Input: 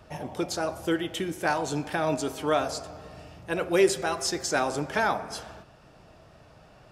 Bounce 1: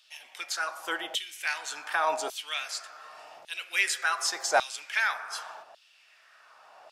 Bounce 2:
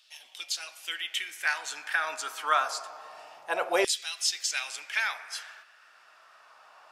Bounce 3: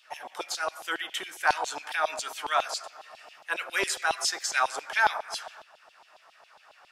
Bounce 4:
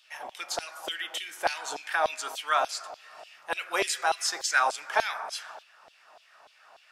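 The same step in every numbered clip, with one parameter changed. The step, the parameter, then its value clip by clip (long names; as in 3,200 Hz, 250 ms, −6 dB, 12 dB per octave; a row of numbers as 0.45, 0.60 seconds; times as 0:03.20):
auto-filter high-pass, speed: 0.87, 0.26, 7.3, 3.4 Hertz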